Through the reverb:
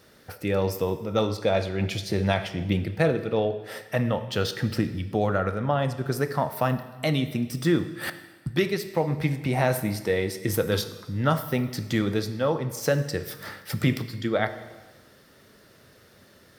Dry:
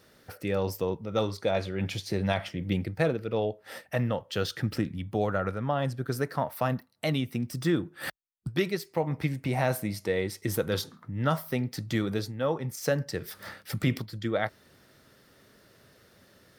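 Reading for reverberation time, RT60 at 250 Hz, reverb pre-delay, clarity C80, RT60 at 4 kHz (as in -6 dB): 1.3 s, 1.3 s, 6 ms, 14.0 dB, 1.2 s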